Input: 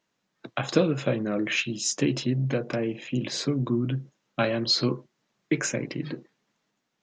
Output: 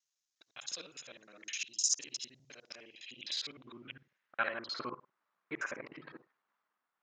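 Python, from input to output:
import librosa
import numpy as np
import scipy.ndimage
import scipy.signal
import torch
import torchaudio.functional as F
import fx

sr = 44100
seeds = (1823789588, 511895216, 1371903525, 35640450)

y = fx.local_reverse(x, sr, ms=51.0)
y = fx.filter_sweep_bandpass(y, sr, from_hz=6300.0, to_hz=1200.0, start_s=2.55, end_s=4.77, q=2.3)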